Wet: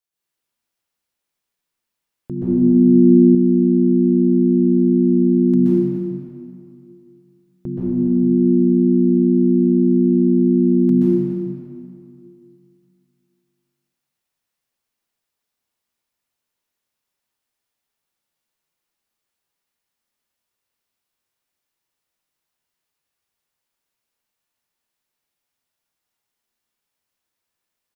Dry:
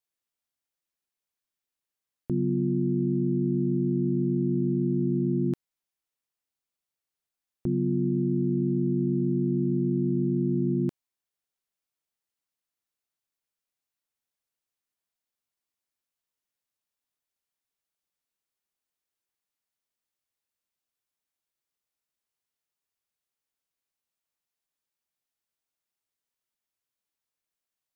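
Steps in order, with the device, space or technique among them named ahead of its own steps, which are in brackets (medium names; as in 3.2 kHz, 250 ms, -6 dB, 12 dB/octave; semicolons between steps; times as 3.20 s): cave (delay 292 ms -15 dB; reverberation RT60 2.5 s, pre-delay 120 ms, DRR -9.5 dB); 2.35–3.35 s: dynamic bell 280 Hz, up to +5 dB, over -27 dBFS, Q 0.83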